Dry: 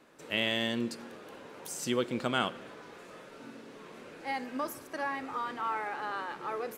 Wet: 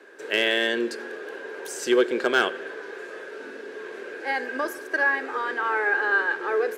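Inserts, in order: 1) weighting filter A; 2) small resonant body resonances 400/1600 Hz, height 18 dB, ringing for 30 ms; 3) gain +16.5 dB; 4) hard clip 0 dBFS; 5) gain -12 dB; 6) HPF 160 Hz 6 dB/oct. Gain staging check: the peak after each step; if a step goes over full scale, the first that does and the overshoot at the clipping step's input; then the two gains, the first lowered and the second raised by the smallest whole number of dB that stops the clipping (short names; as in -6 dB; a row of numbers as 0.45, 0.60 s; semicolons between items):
-14.5, -11.0, +5.5, 0.0, -12.0, -10.0 dBFS; step 3, 5.5 dB; step 3 +10.5 dB, step 5 -6 dB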